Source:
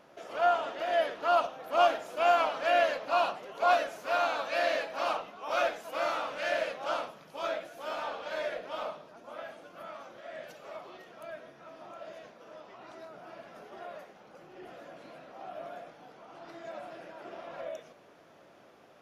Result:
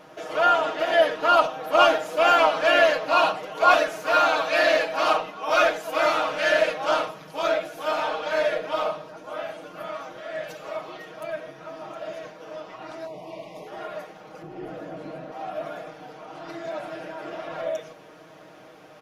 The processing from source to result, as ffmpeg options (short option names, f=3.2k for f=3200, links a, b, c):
-filter_complex "[0:a]asettb=1/sr,asplit=3[a][b][c];[a]atrim=end=13.064[d];[b]atrim=start=13.06:end=13.67,asetpts=PTS-STARTPTS,afade=t=in:d=0.004:c=qsin,afade=t=out:st=0.606:d=0.004:c=qsin,asuperstop=centerf=1500:order=12:qfactor=1.9[e];[c]atrim=start=13.666[f];[d][e]acrossfade=d=0.004:c1=hsin:c2=qsin[g];[g][f]acrossfade=d=0.004:c1=qsin:c2=hsin,asettb=1/sr,asplit=3[h][i][j];[h]atrim=end=14.424[k];[i]atrim=start=14.42:end=15.32,asetpts=PTS-STARTPTS,afade=t=in:d=0.004:c=qsin,afade=t=out:st=0.896:d=0.004:c=qsin,tiltshelf=f=860:g=6[l];[j]atrim=start=15.316[m];[k][l]acrossfade=d=0.004:c1=hsin:c2=qsin[n];[n][m]acrossfade=d=0.004:c1=qsin:c2=hsin,aecho=1:1:6.4:0.77,volume=8dB"